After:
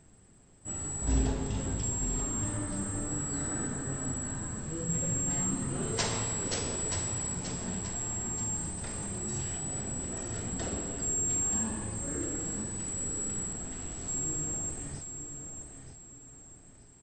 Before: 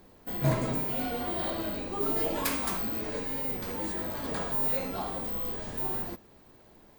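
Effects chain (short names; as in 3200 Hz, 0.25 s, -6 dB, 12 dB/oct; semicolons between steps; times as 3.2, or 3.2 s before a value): frequency-shifting echo 0.381 s, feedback 34%, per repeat -35 Hz, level -8.5 dB; wide varispeed 0.41×; gain -2.5 dB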